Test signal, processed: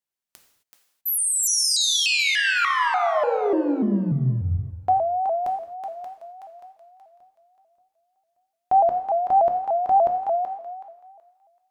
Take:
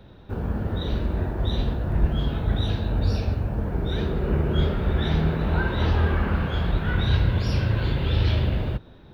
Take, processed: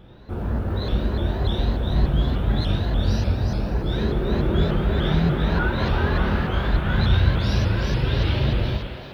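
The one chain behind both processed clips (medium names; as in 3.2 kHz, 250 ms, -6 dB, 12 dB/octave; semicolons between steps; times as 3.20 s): thinning echo 377 ms, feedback 28%, high-pass 540 Hz, level -4.5 dB; gated-style reverb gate 290 ms falling, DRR 2.5 dB; vibrato with a chosen wave saw up 3.4 Hz, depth 160 cents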